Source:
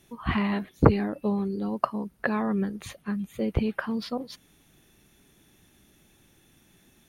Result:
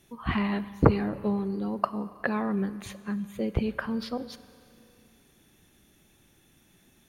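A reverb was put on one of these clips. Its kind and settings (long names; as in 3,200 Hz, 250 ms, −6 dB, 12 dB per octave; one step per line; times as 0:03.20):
four-comb reverb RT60 2.6 s, combs from 31 ms, DRR 15.5 dB
level −1.5 dB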